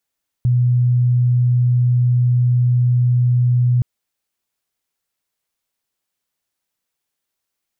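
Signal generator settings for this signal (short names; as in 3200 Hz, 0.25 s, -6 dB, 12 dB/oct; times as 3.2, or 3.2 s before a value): tone sine 123 Hz -11.5 dBFS 3.37 s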